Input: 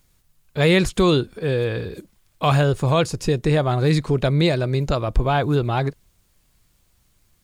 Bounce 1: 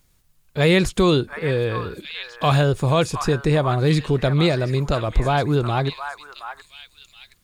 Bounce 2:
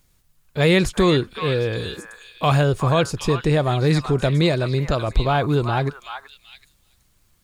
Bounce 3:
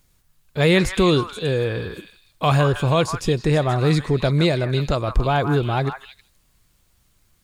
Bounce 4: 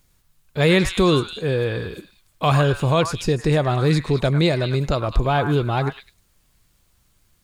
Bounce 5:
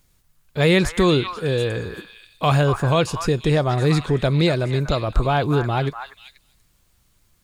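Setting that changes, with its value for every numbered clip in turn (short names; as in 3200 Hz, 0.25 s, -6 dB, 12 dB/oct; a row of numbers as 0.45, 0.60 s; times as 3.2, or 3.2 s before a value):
delay with a stepping band-pass, time: 0.721, 0.378, 0.159, 0.103, 0.242 s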